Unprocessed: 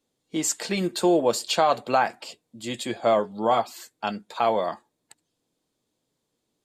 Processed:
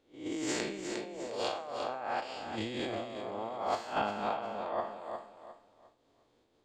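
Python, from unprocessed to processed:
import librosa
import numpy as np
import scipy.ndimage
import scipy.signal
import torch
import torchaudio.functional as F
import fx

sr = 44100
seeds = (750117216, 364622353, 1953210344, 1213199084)

p1 = fx.spec_blur(x, sr, span_ms=220.0)
p2 = fx.level_steps(p1, sr, step_db=21)
p3 = p1 + (p2 * 10.0 ** (-1.5 / 20.0))
p4 = fx.spacing_loss(p3, sr, db_at_10k=23)
p5 = fx.over_compress(p4, sr, threshold_db=-38.0, ratio=-1.0)
p6 = fx.peak_eq(p5, sr, hz=170.0, db=-12.0, octaves=1.1)
p7 = p6 + fx.echo_feedback(p6, sr, ms=356, feedback_pct=31, wet_db=-8.0, dry=0)
p8 = fx.am_noise(p7, sr, seeds[0], hz=5.7, depth_pct=60)
y = p8 * 10.0 ** (5.5 / 20.0)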